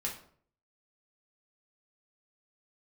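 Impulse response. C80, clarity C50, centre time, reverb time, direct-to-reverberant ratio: 12.5 dB, 8.0 dB, 23 ms, 0.55 s, -2.5 dB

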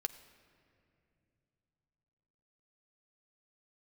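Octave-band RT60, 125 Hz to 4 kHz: 4.1 s, 3.7 s, 3.0 s, 2.3 s, 2.3 s, 1.5 s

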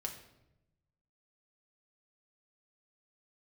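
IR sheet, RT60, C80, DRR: 0.90 s, 11.0 dB, 1.0 dB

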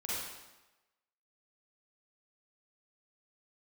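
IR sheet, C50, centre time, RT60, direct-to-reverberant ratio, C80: -4.5 dB, 100 ms, 1.1 s, -8.5 dB, 0.0 dB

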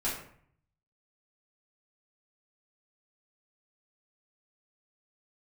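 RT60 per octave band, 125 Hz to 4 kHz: 0.95 s, 0.70 s, 0.60 s, 0.60 s, 0.55 s, 0.40 s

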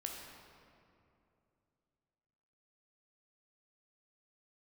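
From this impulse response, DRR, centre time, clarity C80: 0.0 dB, 88 ms, 3.0 dB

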